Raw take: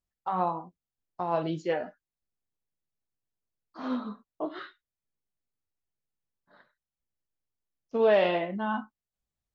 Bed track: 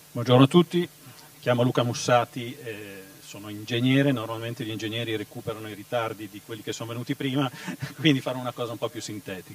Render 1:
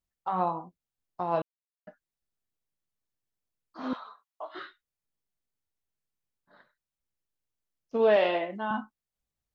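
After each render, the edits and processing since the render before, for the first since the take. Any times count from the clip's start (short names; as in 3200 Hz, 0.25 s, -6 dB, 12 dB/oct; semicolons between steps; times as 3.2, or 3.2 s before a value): 1.42–1.87 mute; 3.93–4.55 HPF 730 Hz 24 dB/oct; 8.16–8.71 HPF 280 Hz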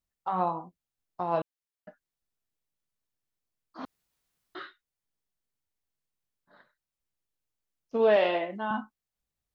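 3.85–4.55 room tone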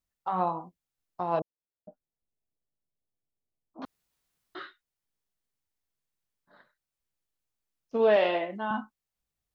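1.39–3.82 inverse Chebyshev low-pass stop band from 2000 Hz, stop band 50 dB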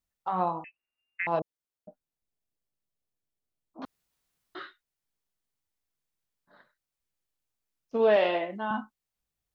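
0.64–1.27 inverted band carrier 2800 Hz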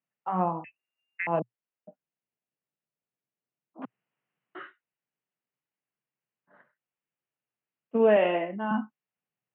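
dynamic EQ 210 Hz, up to +7 dB, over -43 dBFS, Q 0.98; Chebyshev band-pass 120–2900 Hz, order 5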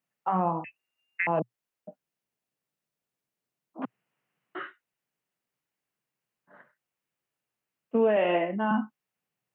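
in parallel at -2 dB: compressor, threshold -31 dBFS, peak gain reduction 14 dB; on the sum: limiter -15.5 dBFS, peak gain reduction 7 dB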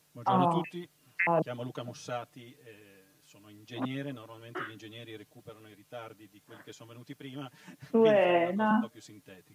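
add bed track -16.5 dB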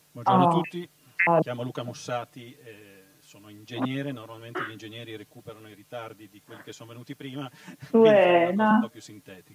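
gain +6 dB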